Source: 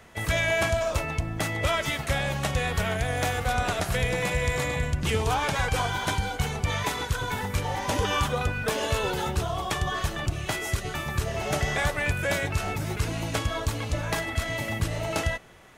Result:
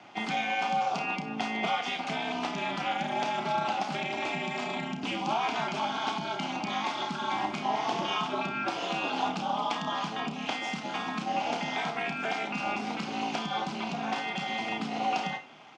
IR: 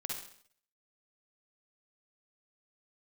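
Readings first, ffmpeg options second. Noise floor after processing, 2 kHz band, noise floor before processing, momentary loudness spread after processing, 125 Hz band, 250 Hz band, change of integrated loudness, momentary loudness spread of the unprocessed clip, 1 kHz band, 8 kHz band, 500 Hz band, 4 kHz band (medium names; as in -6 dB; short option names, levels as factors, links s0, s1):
-38 dBFS, -5.0 dB, -35 dBFS, 4 LU, -16.0 dB, -0.5 dB, -3.5 dB, 4 LU, +1.5 dB, -12.5 dB, -6.5 dB, -2.0 dB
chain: -filter_complex "[0:a]highshelf=f=2800:g=10.5,acompressor=threshold=0.0501:ratio=6,aeval=exprs='val(0)*sin(2*PI*110*n/s)':c=same,highpass=f=150:w=0.5412,highpass=f=150:w=1.3066,equalizer=f=180:t=q:w=4:g=-4,equalizer=f=500:t=q:w=4:g=-9,equalizer=f=780:t=q:w=4:g=9,equalizer=f=1800:t=q:w=4:g=-10,equalizer=f=3900:t=q:w=4:g=-7,lowpass=f=4400:w=0.5412,lowpass=f=4400:w=1.3066,asplit=2[s0][s1];[s1]adelay=32,volume=0.398[s2];[s0][s2]amix=inputs=2:normalize=0,asplit=2[s3][s4];[1:a]atrim=start_sample=2205,atrim=end_sample=3087[s5];[s4][s5]afir=irnorm=-1:irlink=0,volume=0.473[s6];[s3][s6]amix=inputs=2:normalize=0"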